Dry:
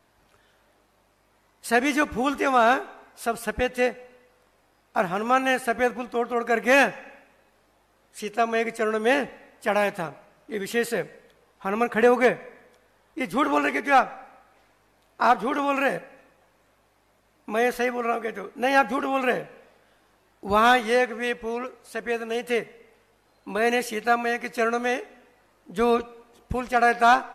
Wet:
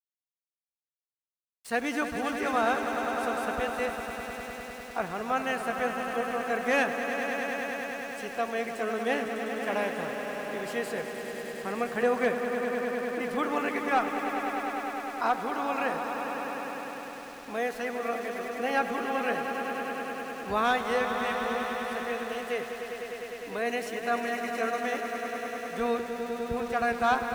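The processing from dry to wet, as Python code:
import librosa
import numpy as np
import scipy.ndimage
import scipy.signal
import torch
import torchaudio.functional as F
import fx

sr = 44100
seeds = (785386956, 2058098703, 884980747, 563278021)

y = scipy.signal.sosfilt(scipy.signal.bessel(2, 11000.0, 'lowpass', norm='mag', fs=sr, output='sos'), x)
y = fx.echo_swell(y, sr, ms=101, loudest=5, wet_db=-10)
y = np.where(np.abs(y) >= 10.0 ** (-36.0 / 20.0), y, 0.0)
y = F.gain(torch.from_numpy(y), -8.0).numpy()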